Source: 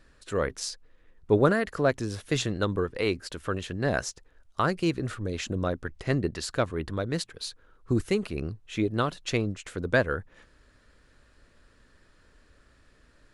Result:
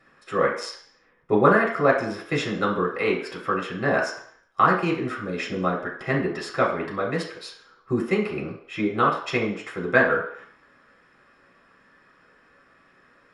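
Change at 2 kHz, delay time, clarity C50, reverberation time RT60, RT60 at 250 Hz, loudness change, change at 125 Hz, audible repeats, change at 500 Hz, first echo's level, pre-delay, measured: +7.5 dB, none, 6.0 dB, 0.65 s, 0.50 s, +5.0 dB, -1.5 dB, none, +4.5 dB, none, 3 ms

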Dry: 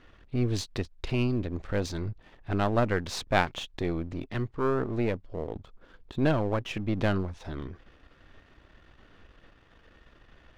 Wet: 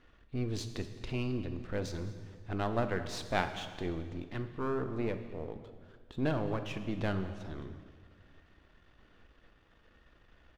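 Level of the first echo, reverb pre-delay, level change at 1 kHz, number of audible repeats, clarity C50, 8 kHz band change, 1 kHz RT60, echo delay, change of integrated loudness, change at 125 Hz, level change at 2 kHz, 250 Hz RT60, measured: -19.5 dB, 3 ms, -6.0 dB, 1, 9.5 dB, -6.5 dB, 1.6 s, 0.216 s, -6.5 dB, -7.0 dB, -6.5 dB, 2.1 s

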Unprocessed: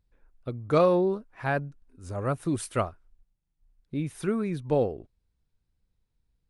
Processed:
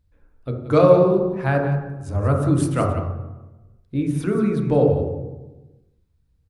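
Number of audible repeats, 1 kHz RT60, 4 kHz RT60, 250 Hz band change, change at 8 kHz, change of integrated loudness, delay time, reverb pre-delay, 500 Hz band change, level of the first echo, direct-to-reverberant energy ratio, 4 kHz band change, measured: 1, 1.0 s, 0.80 s, +9.0 dB, +3.5 dB, +8.0 dB, 0.179 s, 3 ms, +8.5 dB, -11.0 dB, 1.0 dB, +3.5 dB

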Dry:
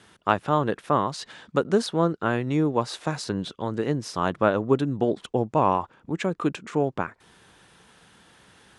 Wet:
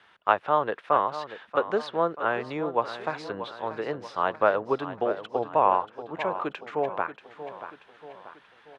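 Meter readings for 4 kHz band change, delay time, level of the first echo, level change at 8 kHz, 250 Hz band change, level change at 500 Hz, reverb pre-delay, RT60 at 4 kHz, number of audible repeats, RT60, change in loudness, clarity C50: -5.5 dB, 0.634 s, -12.0 dB, under -15 dB, -10.5 dB, -1.5 dB, none, none, 4, none, -2.0 dB, none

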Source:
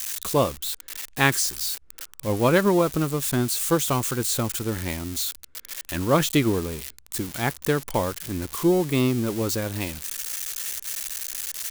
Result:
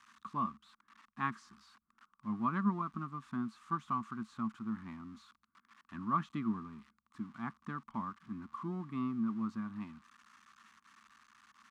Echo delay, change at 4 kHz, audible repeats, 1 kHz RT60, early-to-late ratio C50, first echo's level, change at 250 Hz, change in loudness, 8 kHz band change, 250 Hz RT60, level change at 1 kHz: none, -31.0 dB, none, none, none, none, -12.0 dB, -14.5 dB, under -40 dB, none, -9.0 dB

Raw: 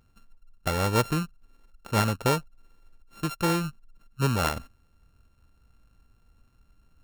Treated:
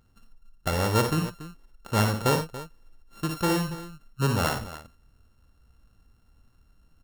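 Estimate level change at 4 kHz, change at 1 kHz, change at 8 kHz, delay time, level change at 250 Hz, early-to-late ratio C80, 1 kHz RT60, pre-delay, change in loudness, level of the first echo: +1.0 dB, +0.5 dB, +1.0 dB, 57 ms, +1.0 dB, none, none, none, +0.5 dB, -6.5 dB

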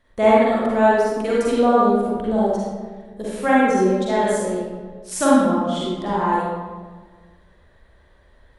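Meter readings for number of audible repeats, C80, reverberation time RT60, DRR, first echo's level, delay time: none, -1.0 dB, 1.5 s, -7.5 dB, none, none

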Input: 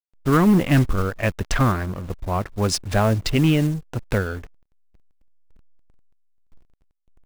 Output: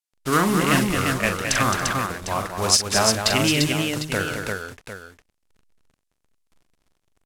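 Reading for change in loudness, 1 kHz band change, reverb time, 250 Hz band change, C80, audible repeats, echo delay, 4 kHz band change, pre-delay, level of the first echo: +0.5 dB, +3.0 dB, none, -3.5 dB, none, 5, 41 ms, +9.0 dB, none, -7.0 dB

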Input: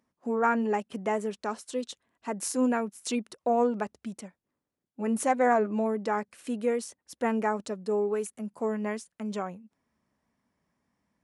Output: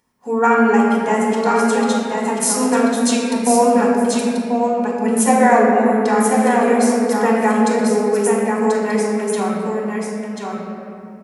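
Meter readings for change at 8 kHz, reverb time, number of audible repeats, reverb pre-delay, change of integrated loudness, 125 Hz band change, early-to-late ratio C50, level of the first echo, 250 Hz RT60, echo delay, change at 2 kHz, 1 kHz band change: +17.0 dB, 2.7 s, 1, 3 ms, +13.5 dB, n/a, -2.5 dB, -4.5 dB, 3.7 s, 1.037 s, +14.0 dB, +14.0 dB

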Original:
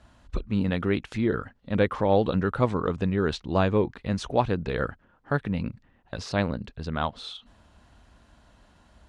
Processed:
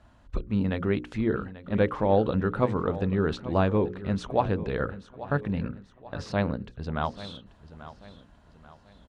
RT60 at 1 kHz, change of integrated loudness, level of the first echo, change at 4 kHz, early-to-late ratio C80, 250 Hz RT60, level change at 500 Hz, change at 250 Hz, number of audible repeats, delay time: none, -1.0 dB, -15.5 dB, -5.0 dB, none, none, -0.5 dB, -0.5 dB, 3, 0.837 s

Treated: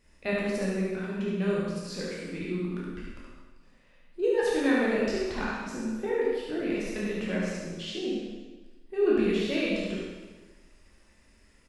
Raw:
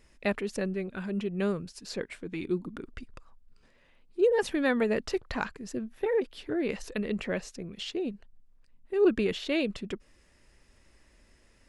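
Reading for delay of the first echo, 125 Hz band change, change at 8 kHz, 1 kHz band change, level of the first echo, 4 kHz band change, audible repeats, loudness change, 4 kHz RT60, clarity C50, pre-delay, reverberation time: 72 ms, +3.5 dB, +1.5 dB, +1.0 dB, -3.0 dB, +1.5 dB, 1, +1.0 dB, 1.2 s, -2.5 dB, 6 ms, 1.3 s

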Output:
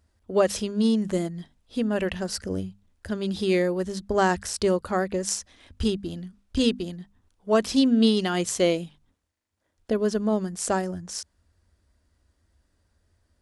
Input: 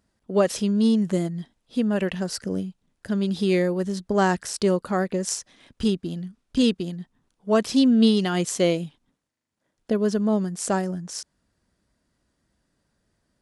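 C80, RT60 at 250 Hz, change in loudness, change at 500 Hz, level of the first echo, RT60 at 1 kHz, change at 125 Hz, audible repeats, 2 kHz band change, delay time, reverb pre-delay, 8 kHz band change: none, none, -2.0 dB, -0.5 dB, none, none, -4.0 dB, none, 0.0 dB, none, none, 0.0 dB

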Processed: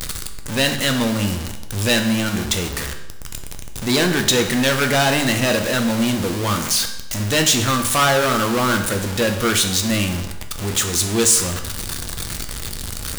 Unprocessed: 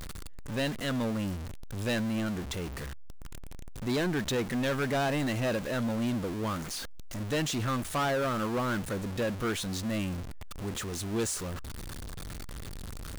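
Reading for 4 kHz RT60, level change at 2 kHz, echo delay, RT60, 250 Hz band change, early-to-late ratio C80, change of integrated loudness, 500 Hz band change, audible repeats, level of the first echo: 0.80 s, +14.5 dB, none, 0.90 s, +10.5 dB, 10.5 dB, +13.5 dB, +11.0 dB, none, none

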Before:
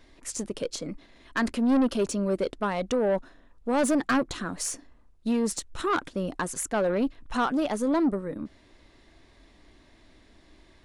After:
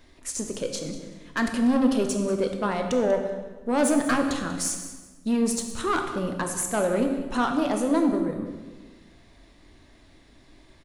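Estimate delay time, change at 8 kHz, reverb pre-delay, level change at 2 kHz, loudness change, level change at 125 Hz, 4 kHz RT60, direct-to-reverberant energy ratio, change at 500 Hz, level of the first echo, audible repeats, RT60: 0.191 s, +4.0 dB, 11 ms, +1.5 dB, +2.0 dB, +2.5 dB, 1.0 s, 4.0 dB, +2.0 dB, -14.5 dB, 1, 1.3 s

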